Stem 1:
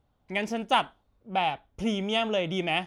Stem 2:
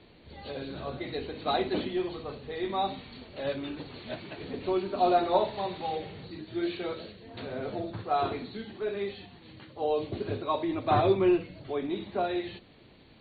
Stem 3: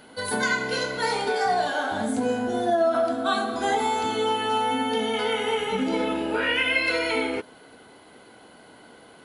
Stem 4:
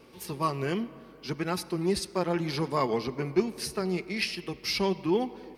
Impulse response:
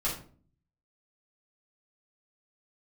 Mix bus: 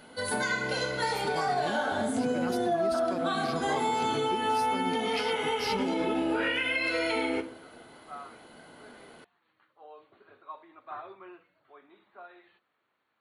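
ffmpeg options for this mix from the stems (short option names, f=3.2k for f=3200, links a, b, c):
-filter_complex "[0:a]bandpass=f=510:t=q:w=3.8:csg=0,volume=-6dB[a];[1:a]bandpass=f=1.3k:t=q:w=2.6:csg=0,volume=-8dB[b];[2:a]volume=-4.5dB,asplit=2[c][d];[d]volume=-11dB[e];[3:a]adelay=950,volume=-6dB[f];[4:a]atrim=start_sample=2205[g];[e][g]afir=irnorm=-1:irlink=0[h];[a][b][c][f][h]amix=inputs=5:normalize=0,alimiter=limit=-19.5dB:level=0:latency=1:release=136"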